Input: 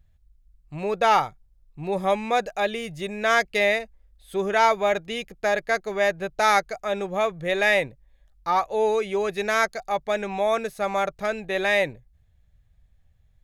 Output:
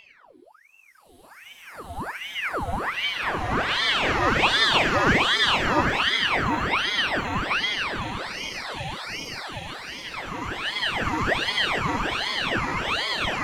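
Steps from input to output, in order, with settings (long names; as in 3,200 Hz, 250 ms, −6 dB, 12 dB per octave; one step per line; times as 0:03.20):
extreme stretch with random phases 7.7×, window 0.50 s, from 0:04.00
ring modulator whose carrier an LFO sweeps 1,500 Hz, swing 80%, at 1.3 Hz
level +1.5 dB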